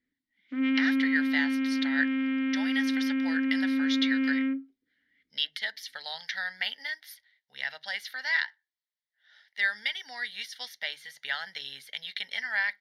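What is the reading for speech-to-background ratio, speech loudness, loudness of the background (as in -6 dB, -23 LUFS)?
-4.5 dB, -32.5 LUFS, -28.0 LUFS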